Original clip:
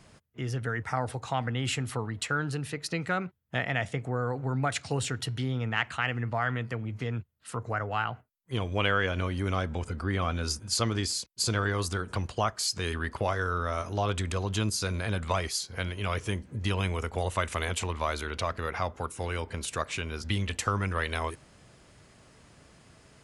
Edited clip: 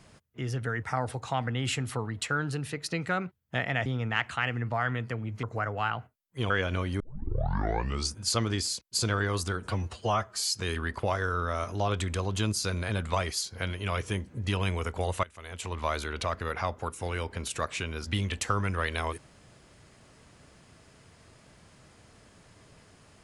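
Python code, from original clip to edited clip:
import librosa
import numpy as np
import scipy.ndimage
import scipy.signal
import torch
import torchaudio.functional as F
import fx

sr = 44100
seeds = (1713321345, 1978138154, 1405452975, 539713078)

y = fx.edit(x, sr, fx.cut(start_s=3.86, length_s=1.61),
    fx.cut(start_s=7.04, length_s=0.53),
    fx.cut(start_s=8.64, length_s=0.31),
    fx.tape_start(start_s=9.45, length_s=1.13),
    fx.stretch_span(start_s=12.14, length_s=0.55, factor=1.5),
    fx.fade_in_from(start_s=17.41, length_s=0.58, curve='qua', floor_db=-19.5), tone=tone)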